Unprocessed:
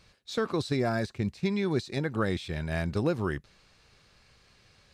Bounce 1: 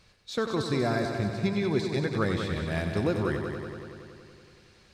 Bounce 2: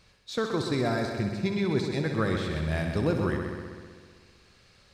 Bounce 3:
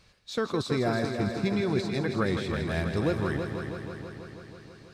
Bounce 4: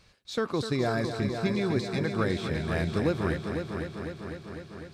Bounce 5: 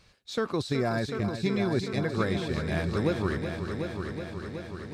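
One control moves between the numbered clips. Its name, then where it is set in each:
multi-head echo, time: 94, 64, 162, 251, 372 ms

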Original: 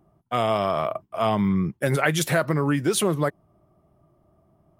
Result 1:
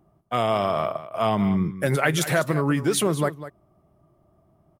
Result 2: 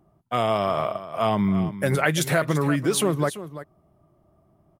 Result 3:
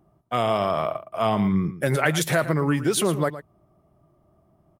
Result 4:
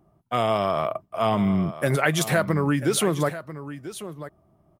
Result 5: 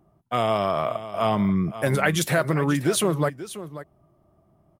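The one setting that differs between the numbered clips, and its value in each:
echo, time: 0.198, 0.339, 0.114, 0.991, 0.536 s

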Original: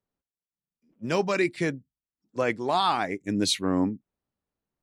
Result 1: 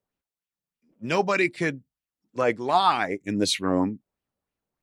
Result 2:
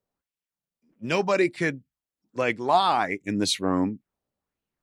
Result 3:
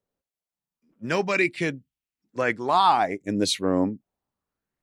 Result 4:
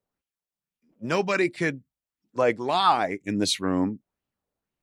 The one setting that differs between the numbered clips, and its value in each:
LFO bell, rate: 3.2, 1.4, 0.28, 2 Hz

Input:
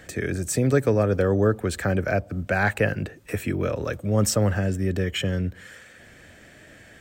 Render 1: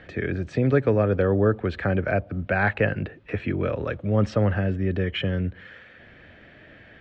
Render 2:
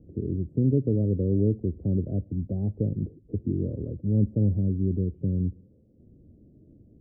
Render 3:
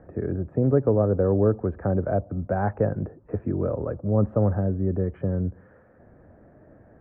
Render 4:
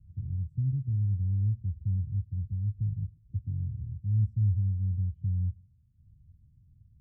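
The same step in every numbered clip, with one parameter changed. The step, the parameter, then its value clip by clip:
inverse Chebyshev low-pass, stop band from: 12000, 1600, 4600, 560 Hz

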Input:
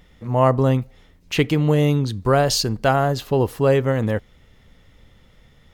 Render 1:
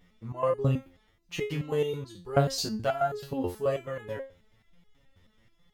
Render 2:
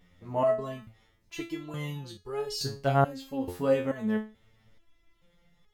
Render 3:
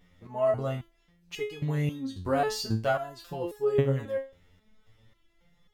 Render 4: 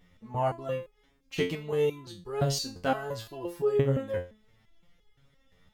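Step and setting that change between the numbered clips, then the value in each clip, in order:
stepped resonator, rate: 9.3, 2.3, 3.7, 5.8 Hz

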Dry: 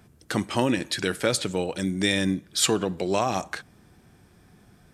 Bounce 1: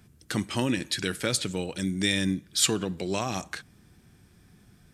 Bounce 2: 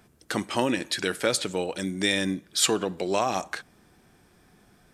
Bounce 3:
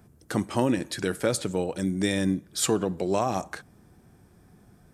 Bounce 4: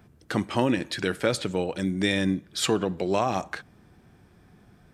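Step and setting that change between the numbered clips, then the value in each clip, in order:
bell, frequency: 700, 98, 3100, 9900 Hz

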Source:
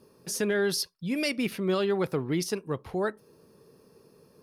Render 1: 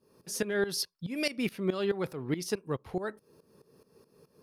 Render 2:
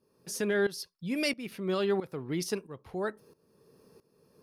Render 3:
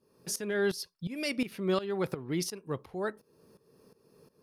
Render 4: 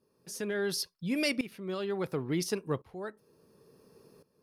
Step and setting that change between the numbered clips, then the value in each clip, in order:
tremolo, rate: 4.7, 1.5, 2.8, 0.71 Hz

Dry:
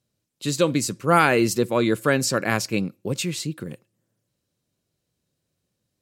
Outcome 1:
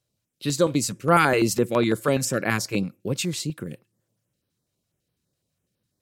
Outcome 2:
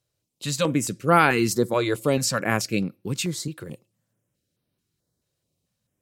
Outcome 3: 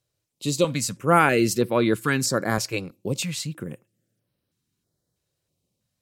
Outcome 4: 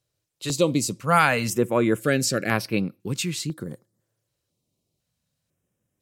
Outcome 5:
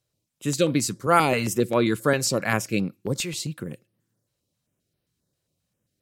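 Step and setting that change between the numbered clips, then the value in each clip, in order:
stepped notch, rate: 12, 4.6, 3.1, 2, 7.5 Hz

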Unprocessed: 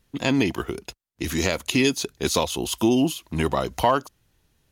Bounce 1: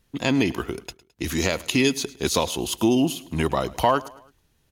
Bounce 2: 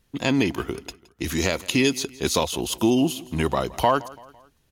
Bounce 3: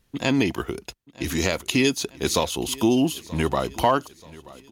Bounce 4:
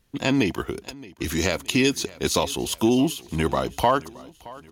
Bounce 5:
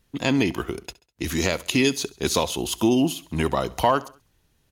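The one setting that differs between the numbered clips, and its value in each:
feedback echo, time: 107, 168, 931, 621, 67 ms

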